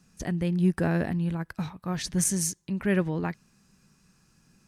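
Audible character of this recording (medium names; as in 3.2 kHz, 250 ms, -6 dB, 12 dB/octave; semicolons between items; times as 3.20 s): noise floor -65 dBFS; spectral tilt -4.5 dB/octave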